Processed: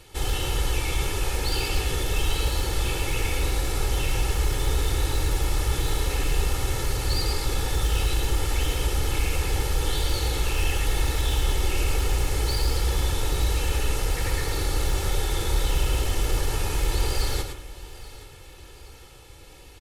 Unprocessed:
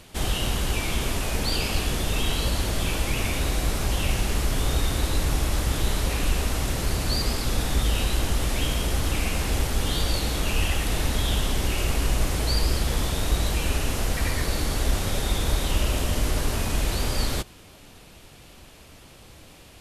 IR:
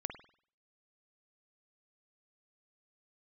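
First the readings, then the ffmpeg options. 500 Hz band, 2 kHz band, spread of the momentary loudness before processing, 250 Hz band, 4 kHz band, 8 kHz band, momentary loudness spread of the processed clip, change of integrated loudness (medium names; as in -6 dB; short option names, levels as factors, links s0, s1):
0.0 dB, -1.0 dB, 2 LU, -5.0 dB, -1.5 dB, -1.0 dB, 2 LU, -0.5 dB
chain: -filter_complex "[0:a]aeval=exprs='0.133*(abs(mod(val(0)/0.133+3,4)-2)-1)':c=same,aecho=1:1:2.3:0.73,aecho=1:1:825|1650|2475|3300:0.126|0.0567|0.0255|0.0115,asplit=2[s0][s1];[1:a]atrim=start_sample=2205,adelay=110[s2];[s1][s2]afir=irnorm=-1:irlink=0,volume=0.562[s3];[s0][s3]amix=inputs=2:normalize=0,volume=0.668"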